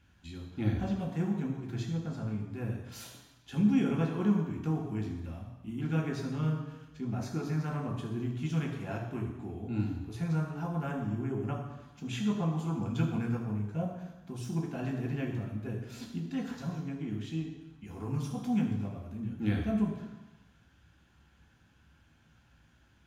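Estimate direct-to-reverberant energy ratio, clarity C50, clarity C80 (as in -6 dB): -0.5 dB, 5.0 dB, 6.5 dB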